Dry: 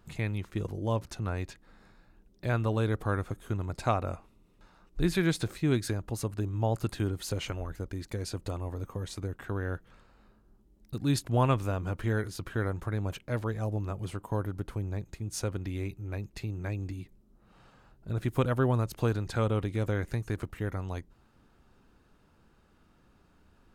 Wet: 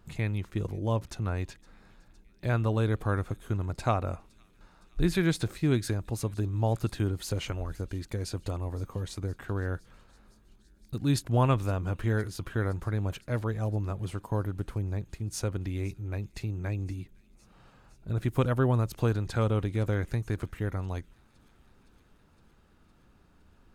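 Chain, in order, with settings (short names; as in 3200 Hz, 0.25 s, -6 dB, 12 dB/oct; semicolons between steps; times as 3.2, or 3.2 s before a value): low shelf 150 Hz +3.5 dB; on a send: thin delay 0.513 s, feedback 74%, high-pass 2900 Hz, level -21.5 dB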